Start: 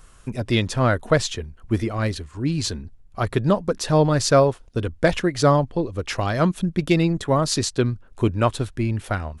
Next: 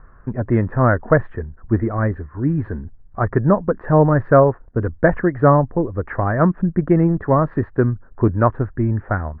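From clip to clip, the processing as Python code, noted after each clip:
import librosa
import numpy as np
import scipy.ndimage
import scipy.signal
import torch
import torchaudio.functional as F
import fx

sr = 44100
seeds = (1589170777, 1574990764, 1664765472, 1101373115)

y = scipy.signal.sosfilt(scipy.signal.cheby1(5, 1.0, 1800.0, 'lowpass', fs=sr, output='sos'), x)
y = y * 10.0 ** (4.5 / 20.0)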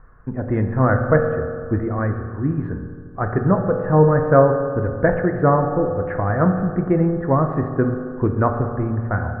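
y = fx.rev_fdn(x, sr, rt60_s=2.1, lf_ratio=1.05, hf_ratio=0.3, size_ms=12.0, drr_db=4.5)
y = y * 10.0 ** (-3.0 / 20.0)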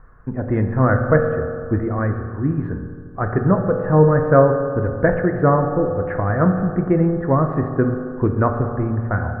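y = fx.dynamic_eq(x, sr, hz=810.0, q=2.6, threshold_db=-29.0, ratio=4.0, max_db=-3)
y = y * 10.0 ** (1.0 / 20.0)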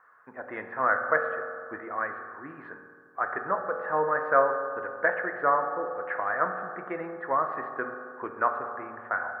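y = scipy.signal.sosfilt(scipy.signal.butter(2, 1000.0, 'highpass', fs=sr, output='sos'), x)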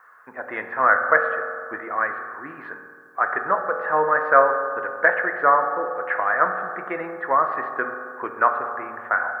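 y = fx.tilt_eq(x, sr, slope=2.0)
y = y * 10.0 ** (7.0 / 20.0)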